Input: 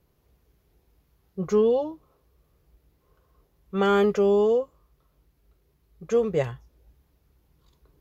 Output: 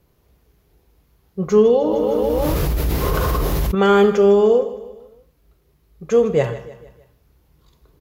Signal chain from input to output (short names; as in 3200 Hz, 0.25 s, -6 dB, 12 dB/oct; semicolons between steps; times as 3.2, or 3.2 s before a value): feedback echo 0.154 s, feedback 47%, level -15.5 dB; Schroeder reverb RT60 0.49 s, combs from 26 ms, DRR 11 dB; 1.81–3.75 fast leveller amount 100%; gain +6.5 dB